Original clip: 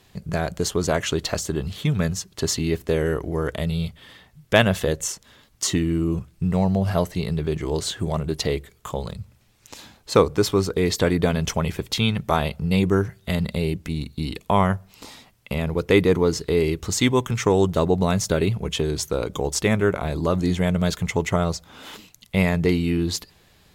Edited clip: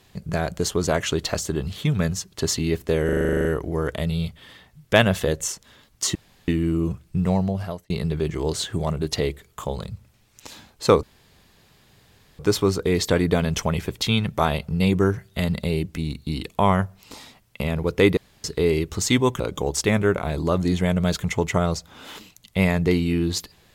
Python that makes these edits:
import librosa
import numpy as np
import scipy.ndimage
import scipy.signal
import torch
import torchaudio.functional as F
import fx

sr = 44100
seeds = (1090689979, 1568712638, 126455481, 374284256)

y = fx.edit(x, sr, fx.stutter(start_s=3.05, slice_s=0.04, count=11),
    fx.insert_room_tone(at_s=5.75, length_s=0.33),
    fx.fade_out_span(start_s=6.58, length_s=0.59),
    fx.insert_room_tone(at_s=10.3, length_s=1.36),
    fx.room_tone_fill(start_s=16.08, length_s=0.27),
    fx.cut(start_s=17.31, length_s=1.87), tone=tone)